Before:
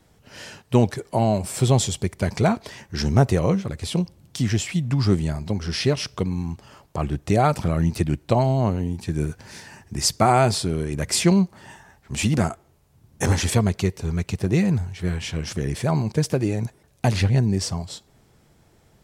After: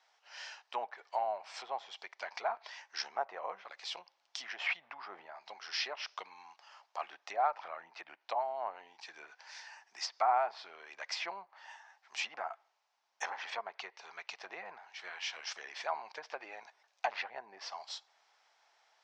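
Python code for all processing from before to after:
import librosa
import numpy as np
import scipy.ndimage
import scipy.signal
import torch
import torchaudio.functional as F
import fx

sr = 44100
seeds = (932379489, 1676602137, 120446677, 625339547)

y = fx.chain(x, sr, fx.high_shelf(hz=5800.0, db=-10.0),
    fx.sustainer(db_per_s=28.0), at=(4.56, 5.26))
y = fx.env_lowpass_down(y, sr, base_hz=1300.0, full_db=-15.5)
y = scipy.signal.sosfilt(scipy.signal.ellip(3, 1.0, 80, [770.0, 5700.0], 'bandpass', fs=sr, output='sos'), y)
y = fx.rider(y, sr, range_db=4, speed_s=2.0)
y = F.gain(torch.from_numpy(y), -8.0).numpy()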